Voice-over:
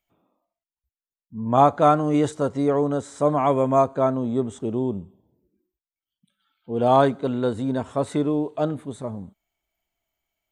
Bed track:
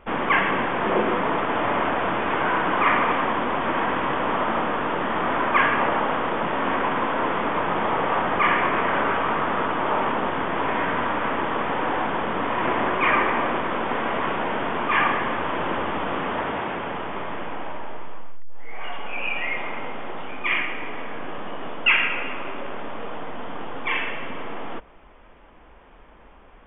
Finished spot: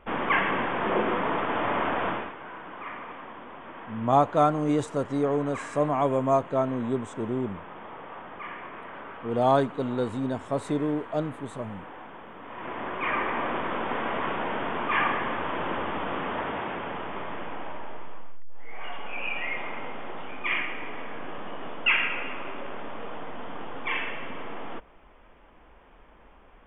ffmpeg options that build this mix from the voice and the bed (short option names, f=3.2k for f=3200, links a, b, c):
-filter_complex "[0:a]adelay=2550,volume=-4.5dB[a];[1:a]volume=10.5dB,afade=t=out:st=2.08:d=0.25:silence=0.177828,afade=t=in:st=12.41:d=1.24:silence=0.188365[b];[a][b]amix=inputs=2:normalize=0"